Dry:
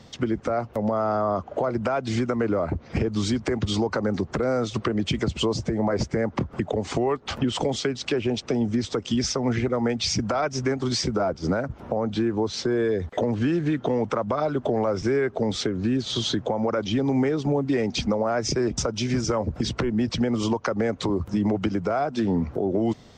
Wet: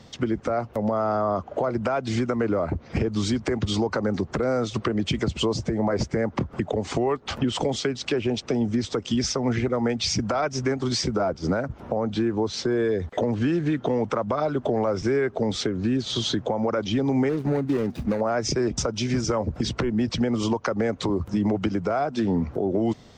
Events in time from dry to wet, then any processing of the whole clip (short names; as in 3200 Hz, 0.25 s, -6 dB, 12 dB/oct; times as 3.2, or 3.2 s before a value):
17.29–18.21 median filter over 41 samples